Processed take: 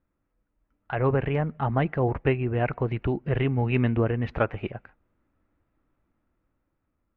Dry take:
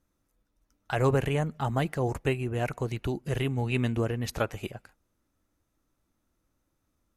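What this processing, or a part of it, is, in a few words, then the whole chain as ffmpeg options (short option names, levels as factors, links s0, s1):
action camera in a waterproof case: -af "lowpass=f=2500:w=0.5412,lowpass=f=2500:w=1.3066,dynaudnorm=f=310:g=9:m=1.88,volume=0.891" -ar 44100 -c:a aac -b:a 128k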